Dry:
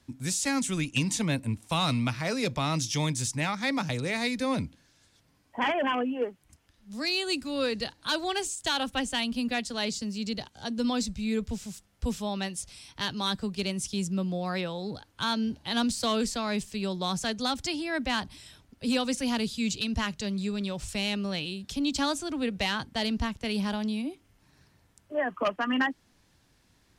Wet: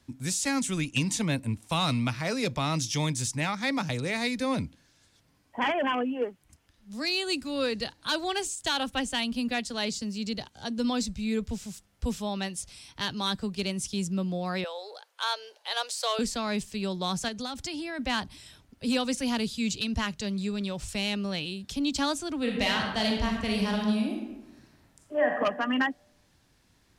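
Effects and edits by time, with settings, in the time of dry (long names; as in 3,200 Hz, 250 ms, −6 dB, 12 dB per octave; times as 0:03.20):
0:14.64–0:16.19: Butterworth high-pass 450 Hz 48 dB per octave
0:17.28–0:17.99: downward compressor 5 to 1, threshold −31 dBFS
0:22.39–0:25.32: thrown reverb, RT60 1.1 s, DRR 0 dB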